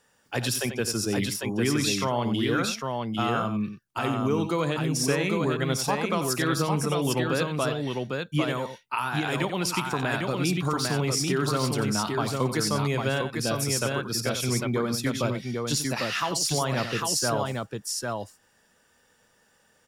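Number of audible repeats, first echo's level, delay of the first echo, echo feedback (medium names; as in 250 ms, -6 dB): 3, -18.0 dB, 56 ms, no regular repeats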